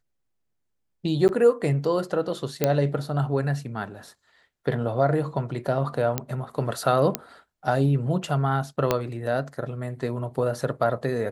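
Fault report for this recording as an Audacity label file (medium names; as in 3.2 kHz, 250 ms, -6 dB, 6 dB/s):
1.280000	1.290000	dropout 9.4 ms
2.640000	2.640000	pop -6 dBFS
6.180000	6.180000	pop -9 dBFS
7.150000	7.150000	pop -5 dBFS
8.910000	8.910000	pop -7 dBFS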